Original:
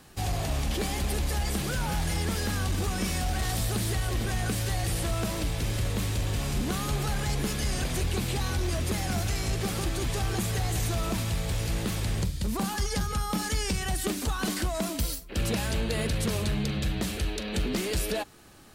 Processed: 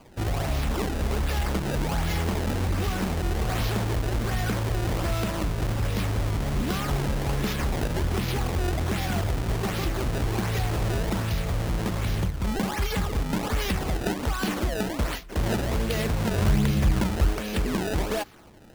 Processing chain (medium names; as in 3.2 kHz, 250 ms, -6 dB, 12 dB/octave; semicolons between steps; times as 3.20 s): 16.38–17.33 s: bass shelf 260 Hz +6.5 dB; decimation with a swept rate 23×, swing 160% 1.3 Hz; trim +2.5 dB